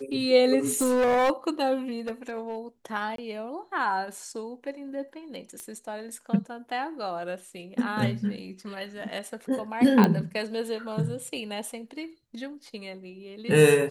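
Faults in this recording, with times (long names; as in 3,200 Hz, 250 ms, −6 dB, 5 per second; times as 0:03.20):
0:00.66–0:01.31: clipping −19.5 dBFS
0:01.98–0:02.58: clipping −27.5 dBFS
0:03.16–0:03.18: drop-out 23 ms
0:05.60: click −24 dBFS
0:10.04: click −9 dBFS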